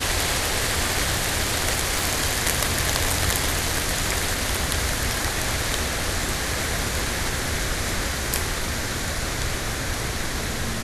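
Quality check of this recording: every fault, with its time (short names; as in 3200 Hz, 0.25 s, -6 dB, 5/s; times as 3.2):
1.99 pop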